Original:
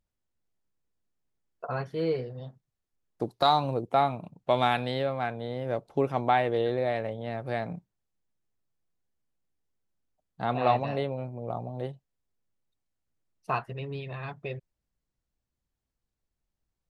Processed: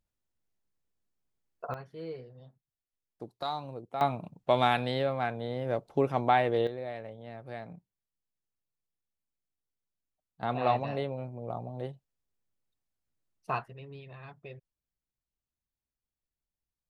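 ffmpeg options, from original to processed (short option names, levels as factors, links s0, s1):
-af "asetnsamples=n=441:p=0,asendcmd='1.74 volume volume -12dB;4.01 volume volume -0.5dB;6.67 volume volume -10dB;10.43 volume volume -3dB;13.68 volume volume -10dB',volume=0.794"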